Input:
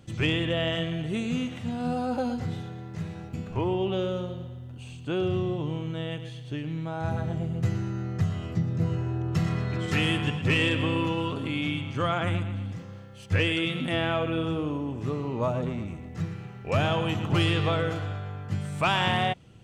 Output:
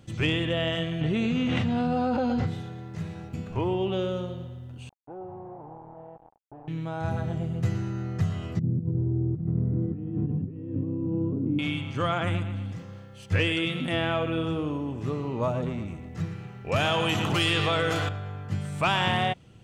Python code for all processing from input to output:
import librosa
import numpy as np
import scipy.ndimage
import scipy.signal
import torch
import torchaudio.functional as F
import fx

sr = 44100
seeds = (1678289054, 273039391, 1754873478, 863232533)

y = fx.chain(x, sr, fx.lowpass(hz=4300.0, slope=12),
    fx.env_flatten(amount_pct=100), at=(1.01, 2.47))
y = fx.chain(y, sr, fx.low_shelf(hz=300.0, db=-8.0),
    fx.quant_dither(seeds[0], bits=6, dither='none'),
    fx.ladder_lowpass(hz=880.0, resonance_pct=75), at=(4.89, 6.68))
y = fx.chain(y, sr, fx.over_compress(threshold_db=-28.0, ratio=-0.5),
    fx.lowpass_res(hz=290.0, q=1.5), at=(8.59, 11.59))
y = fx.chain(y, sr, fx.tilt_eq(slope=2.0),
    fx.env_flatten(amount_pct=70), at=(16.76, 18.09))